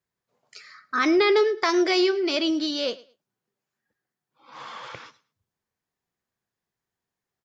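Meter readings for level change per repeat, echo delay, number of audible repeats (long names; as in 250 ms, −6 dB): −13.5 dB, 108 ms, 2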